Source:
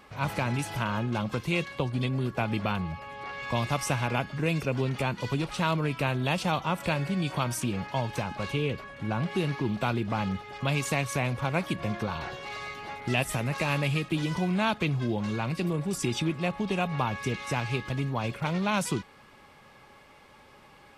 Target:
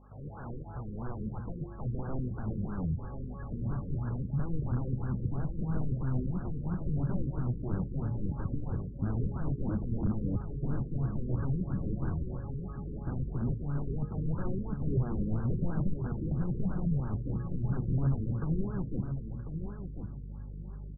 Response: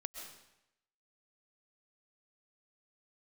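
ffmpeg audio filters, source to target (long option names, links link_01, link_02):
-filter_complex "[0:a]highshelf=frequency=4600:gain=7.5,bandreject=frequency=116:width_type=h:width=4,bandreject=frequency=232:width_type=h:width=4,bandreject=frequency=348:width_type=h:width=4,bandreject=frequency=464:width_type=h:width=4,bandreject=frequency=580:width_type=h:width=4,bandreject=frequency=696:width_type=h:width=4,bandreject=frequency=812:width_type=h:width=4,bandreject=frequency=928:width_type=h:width=4,bandreject=frequency=1044:width_type=h:width=4,bandreject=frequency=1160:width_type=h:width=4,bandreject=frequency=1276:width_type=h:width=4,bandreject=frequency=1392:width_type=h:width=4,bandreject=frequency=1508:width_type=h:width=4,acrossover=split=680|3700[link_01][link_02][link_03];[link_01]crystalizer=i=6:c=0[link_04];[link_04][link_02][link_03]amix=inputs=3:normalize=0,alimiter=limit=-19dB:level=0:latency=1:release=45,aeval=exprs='(mod(20*val(0)+1,2)-1)/20':channel_layout=same,aeval=exprs='val(0)+0.00398*(sin(2*PI*50*n/s)+sin(2*PI*2*50*n/s)/2+sin(2*PI*3*50*n/s)/3+sin(2*PI*4*50*n/s)/4+sin(2*PI*5*50*n/s)/5)':channel_layout=same,asubboost=boost=7:cutoff=250,asplit=2[link_05][link_06];[link_06]aecho=0:1:1046|2092|3138:0.398|0.0876|0.0193[link_07];[link_05][link_07]amix=inputs=2:normalize=0,afftfilt=real='re*lt(b*sr/1024,500*pow(1700/500,0.5+0.5*sin(2*PI*3*pts/sr)))':imag='im*lt(b*sr/1024,500*pow(1700/500,0.5+0.5*sin(2*PI*3*pts/sr)))':win_size=1024:overlap=0.75,volume=-8dB"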